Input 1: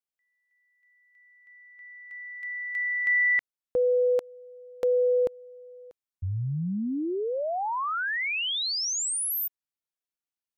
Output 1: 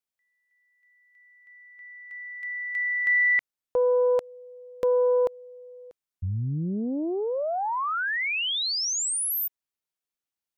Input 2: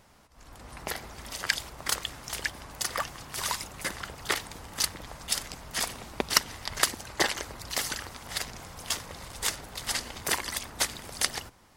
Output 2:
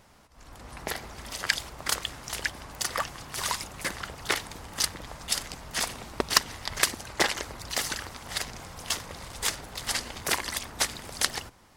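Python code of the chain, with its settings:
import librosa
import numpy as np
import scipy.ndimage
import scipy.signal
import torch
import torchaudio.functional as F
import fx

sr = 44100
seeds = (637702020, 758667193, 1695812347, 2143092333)

y = fx.doppler_dist(x, sr, depth_ms=0.49)
y = y * 10.0 ** (1.5 / 20.0)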